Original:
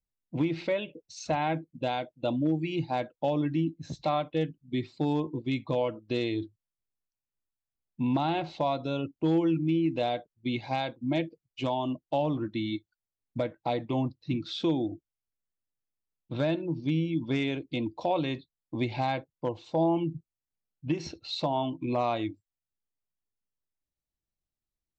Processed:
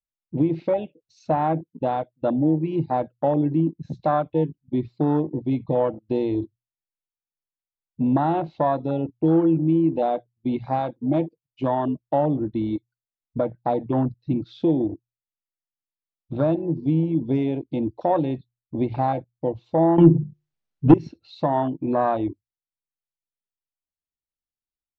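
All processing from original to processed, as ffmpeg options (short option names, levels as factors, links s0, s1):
-filter_complex "[0:a]asettb=1/sr,asplit=3[s0][s1][s2];[s0]atrim=end=19.984[s3];[s1]atrim=start=19.98:end=20.94,asetpts=PTS-STARTPTS,afade=t=in:d=0.004:c=qsin,afade=t=out:st=0.956:d=0.004:c=qsin,aeval=exprs='0.15*sin(PI/2*1.58*val(0)/0.15)':c=same,bandreject=f=50:t=h:w=6,bandreject=f=100:t=h:w=6,bandreject=f=150:t=h:w=6,bandreject=f=200:t=h:w=6,bandreject=f=250:t=h:w=6,bandreject=f=300:t=h:w=6,bandreject=f=350:t=h:w=6,bandreject=f=400:t=h:w=6,bandreject=f=450:t=h:w=6,bandreject=f=500:t=h:w=6,acontrast=62[s4];[s2]atrim=start=20.936[s5];[s3][s4]acrossfade=d=0.004:c1=hsin:c2=qsin[s6];[s6][s5]acrossfade=d=0.004:c1=qsin:c2=hsin,bandreject=f=60:t=h:w=6,bandreject=f=120:t=h:w=6,afwtdn=0.0282,lowpass=5000,volume=2.24"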